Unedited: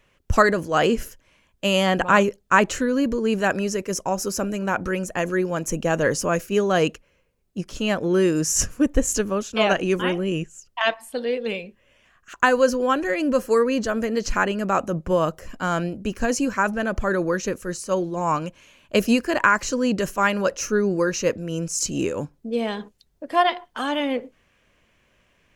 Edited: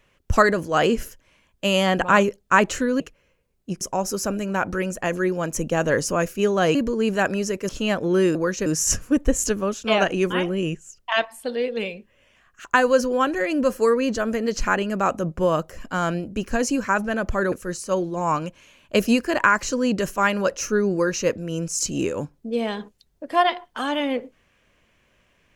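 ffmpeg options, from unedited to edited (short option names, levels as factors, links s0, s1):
-filter_complex "[0:a]asplit=8[s0][s1][s2][s3][s4][s5][s6][s7];[s0]atrim=end=3.002[s8];[s1]atrim=start=6.878:end=7.692[s9];[s2]atrim=start=3.938:end=6.882[s10];[s3]atrim=start=2.998:end=3.942[s11];[s4]atrim=start=7.688:end=8.352[s12];[s5]atrim=start=17.208:end=17.522[s13];[s6]atrim=start=8.348:end=17.212[s14];[s7]atrim=start=17.518[s15];[s8][s9]acrossfade=d=0.004:c1=hsin:c2=hsin[s16];[s16][s10]acrossfade=d=0.004:c1=hsin:c2=hsin[s17];[s17][s11]acrossfade=d=0.004:c1=hsin:c2=hsin[s18];[s18][s12]acrossfade=d=0.004:c1=hsin:c2=hsin[s19];[s19][s13]acrossfade=d=0.004:c1=hsin:c2=hsin[s20];[s20][s14]acrossfade=d=0.004:c1=hsin:c2=hsin[s21];[s21][s15]acrossfade=d=0.004:c1=hsin:c2=hsin"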